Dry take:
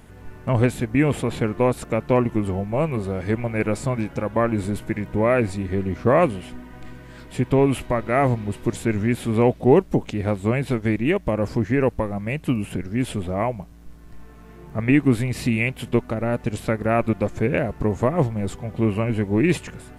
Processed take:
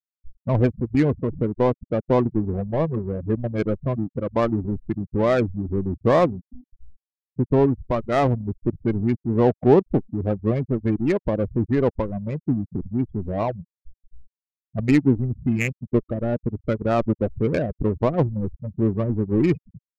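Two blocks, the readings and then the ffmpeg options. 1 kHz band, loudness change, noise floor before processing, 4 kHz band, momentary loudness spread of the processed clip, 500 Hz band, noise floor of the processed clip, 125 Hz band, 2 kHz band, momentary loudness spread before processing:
−1.5 dB, −0.5 dB, −44 dBFS, −5.0 dB, 8 LU, −0.5 dB, below −85 dBFS, −0.5 dB, −6.0 dB, 8 LU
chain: -af "afftfilt=real='re*gte(hypot(re,im),0.126)':imag='im*gte(hypot(re,im),0.126)':win_size=1024:overlap=0.75,adynamicsmooth=sensitivity=1:basefreq=610"

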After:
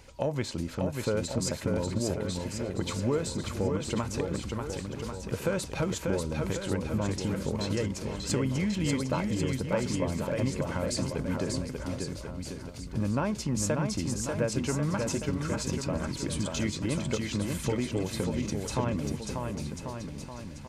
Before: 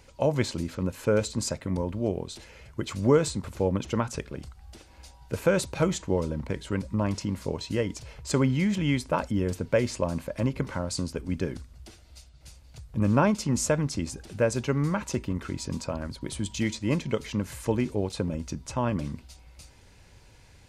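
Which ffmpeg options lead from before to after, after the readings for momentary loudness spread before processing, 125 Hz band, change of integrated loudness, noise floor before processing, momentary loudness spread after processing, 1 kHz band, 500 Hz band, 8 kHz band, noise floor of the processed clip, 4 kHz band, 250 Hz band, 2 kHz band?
11 LU, −1.5 dB, −3.0 dB, −54 dBFS, 7 LU, −3.0 dB, −3.5 dB, +0.5 dB, −41 dBFS, +0.5 dB, −2.0 dB, −2.5 dB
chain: -filter_complex "[0:a]acompressor=threshold=-30dB:ratio=2.5,aeval=exprs='0.188*(cos(1*acos(clip(val(0)/0.188,-1,1)))-cos(1*PI/2))+0.0075*(cos(5*acos(clip(val(0)/0.188,-1,1)))-cos(5*PI/2))':channel_layout=same,asplit=2[link_01][link_02];[link_02]aecho=0:1:590|1092|1518|1880|2188:0.631|0.398|0.251|0.158|0.1[link_03];[link_01][link_03]amix=inputs=2:normalize=0"

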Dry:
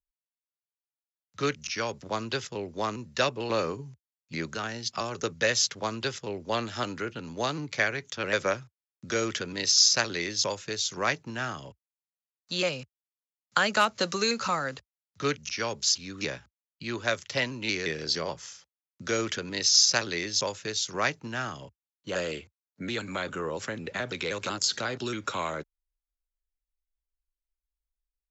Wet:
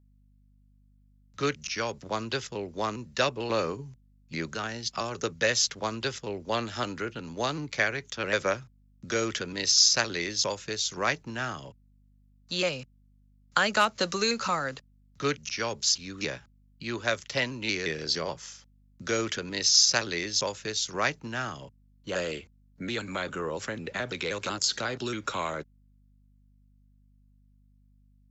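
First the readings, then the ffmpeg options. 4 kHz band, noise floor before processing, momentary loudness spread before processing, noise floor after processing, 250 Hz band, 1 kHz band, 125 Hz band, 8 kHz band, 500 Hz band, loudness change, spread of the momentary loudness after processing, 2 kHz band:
0.0 dB, below −85 dBFS, 12 LU, −61 dBFS, 0.0 dB, 0.0 dB, 0.0 dB, can't be measured, 0.0 dB, 0.0 dB, 12 LU, 0.0 dB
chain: -af "aeval=exprs='val(0)+0.001*(sin(2*PI*50*n/s)+sin(2*PI*2*50*n/s)/2+sin(2*PI*3*50*n/s)/3+sin(2*PI*4*50*n/s)/4+sin(2*PI*5*50*n/s)/5)':channel_layout=same"

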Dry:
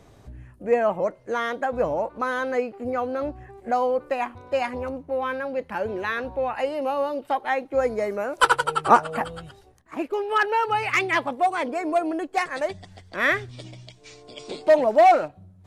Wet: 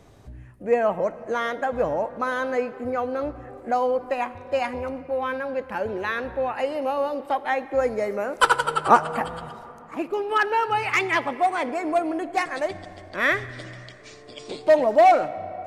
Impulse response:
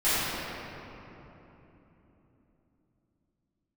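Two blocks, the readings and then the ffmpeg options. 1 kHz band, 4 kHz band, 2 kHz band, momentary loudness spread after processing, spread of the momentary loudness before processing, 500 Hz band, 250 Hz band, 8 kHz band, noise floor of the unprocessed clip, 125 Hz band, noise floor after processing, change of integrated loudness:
0.0 dB, 0.0 dB, 0.0 dB, 17 LU, 14 LU, 0.0 dB, 0.0 dB, 0.0 dB, −53 dBFS, 0.0 dB, −45 dBFS, 0.0 dB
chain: -filter_complex "[0:a]asplit=2[link_01][link_02];[1:a]atrim=start_sample=2205,adelay=32[link_03];[link_02][link_03]afir=irnorm=-1:irlink=0,volume=-31dB[link_04];[link_01][link_04]amix=inputs=2:normalize=0"

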